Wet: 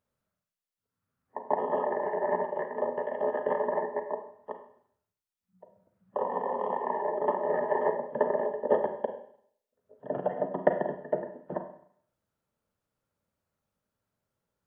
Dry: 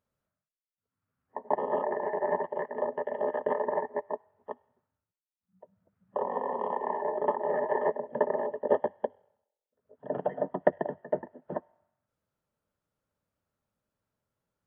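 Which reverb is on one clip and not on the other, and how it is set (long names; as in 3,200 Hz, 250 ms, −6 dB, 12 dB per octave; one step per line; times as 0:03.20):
four-comb reverb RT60 0.6 s, combs from 33 ms, DRR 6 dB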